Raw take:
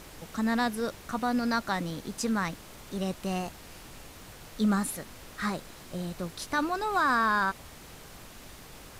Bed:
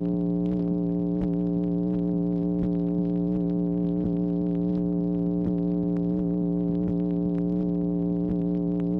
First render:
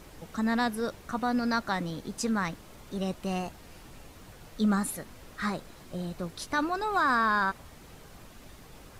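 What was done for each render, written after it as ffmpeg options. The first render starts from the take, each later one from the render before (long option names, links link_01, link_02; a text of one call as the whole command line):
ffmpeg -i in.wav -af "afftdn=noise_reduction=6:noise_floor=-49" out.wav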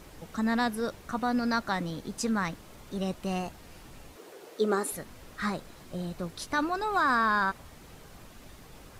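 ffmpeg -i in.wav -filter_complex "[0:a]asettb=1/sr,asplit=3[link_01][link_02][link_03];[link_01]atrim=end=4.164[link_04];[link_02]atrim=start=4.16:end=4.92,asetpts=PTS-STARTPTS,afade=type=in:duration=0.004:curve=qsin,afade=type=out:start_time=0.756:duration=0.004:curve=qsin,highpass=frequency=400:width_type=q:width=4.4[link_05];[link_03]atrim=start=4.916[link_06];[link_04][link_05]acrossfade=duration=0.004:curve1=hsin:curve2=qsin[link_07];[link_07][link_06]acrossfade=duration=0.004:curve1=qsin:curve2=hsin" out.wav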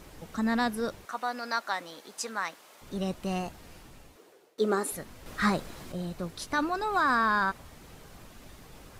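ffmpeg -i in.wav -filter_complex "[0:a]asettb=1/sr,asplit=3[link_01][link_02][link_03];[link_01]atrim=end=1.054[link_04];[link_02]atrim=start=1.05:end=2.82,asetpts=PTS-STARTPTS,afade=type=in:duration=0.004:curve=qsin,afade=type=out:start_time=1.766:duration=0.004:curve=qsin,highpass=590[link_05];[link_03]atrim=start=2.816[link_06];[link_04][link_05]acrossfade=duration=0.004:curve1=hsin:curve2=qsin[link_07];[link_07][link_06]acrossfade=duration=0.004:curve1=qsin:curve2=hsin,asplit=4[link_08][link_09][link_10][link_11];[link_08]atrim=end=4.58,asetpts=PTS-STARTPTS,afade=type=out:start_time=3.68:duration=0.9:silence=0.0841395[link_12];[link_09]atrim=start=4.58:end=5.262,asetpts=PTS-STARTPTS,afade=type=in:duration=0.004:curve=hsin:silence=0.0841395[link_13];[link_10]atrim=start=5.258:end=5.922,asetpts=PTS-STARTPTS,volume=5.5dB[link_14];[link_11]atrim=start=5.918[link_15];[link_12][link_13]concat=n=2:v=0:a=1[link_16];[link_16][link_14]acrossfade=duration=0.004:curve1=hsin:curve2=hsin[link_17];[link_17][link_15]acrossfade=duration=0.004:curve1=hsin:curve2=hsin" out.wav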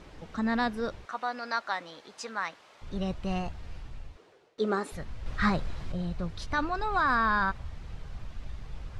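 ffmpeg -i in.wav -af "asubboost=boost=6:cutoff=110,lowpass=4600" out.wav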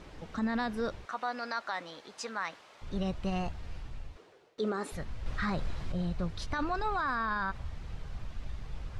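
ffmpeg -i in.wav -af "areverse,acompressor=mode=upward:threshold=-48dB:ratio=2.5,areverse,alimiter=limit=-23.5dB:level=0:latency=1:release=34" out.wav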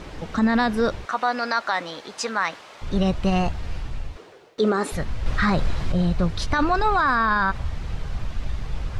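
ffmpeg -i in.wav -af "volume=12dB" out.wav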